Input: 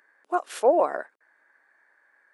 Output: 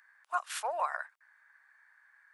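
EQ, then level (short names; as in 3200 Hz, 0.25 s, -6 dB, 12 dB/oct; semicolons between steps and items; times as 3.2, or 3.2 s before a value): HPF 1000 Hz 24 dB/oct; 0.0 dB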